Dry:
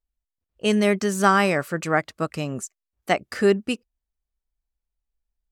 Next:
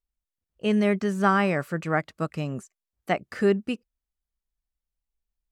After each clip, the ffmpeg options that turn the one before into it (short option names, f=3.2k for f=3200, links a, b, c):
-filter_complex "[0:a]acrossover=split=3200[a][b];[b]acompressor=threshold=-43dB:ratio=4:attack=1:release=60[c];[a][c]amix=inputs=2:normalize=0,equalizer=f=160:w=1.5:g=4.5,volume=-4dB"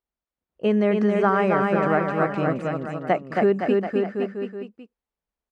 -filter_complex "[0:a]bandpass=f=560:t=q:w=0.51:csg=0,asplit=2[a][b];[b]aecho=0:1:270|513|731.7|928.5|1106:0.631|0.398|0.251|0.158|0.1[c];[a][c]amix=inputs=2:normalize=0,acompressor=threshold=-25dB:ratio=2.5,volume=7.5dB"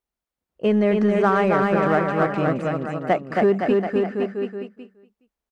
-filter_complex "[0:a]asplit=2[a][b];[b]asoftclip=type=hard:threshold=-22.5dB,volume=-9dB[c];[a][c]amix=inputs=2:normalize=0,aecho=1:1:418:0.075"